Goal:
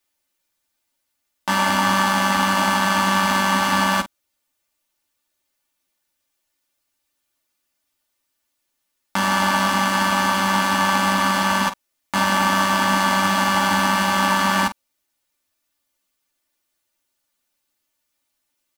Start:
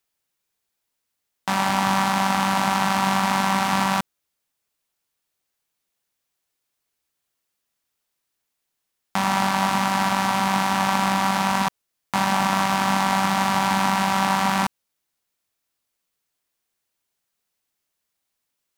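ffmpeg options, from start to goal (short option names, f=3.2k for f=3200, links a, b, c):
-af "aecho=1:1:3.4:0.76,aecho=1:1:11|50:0.631|0.251"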